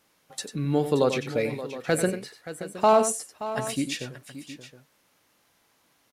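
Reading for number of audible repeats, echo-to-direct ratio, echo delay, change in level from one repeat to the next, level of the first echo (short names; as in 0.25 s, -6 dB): 3, -7.5 dB, 93 ms, no steady repeat, -10.0 dB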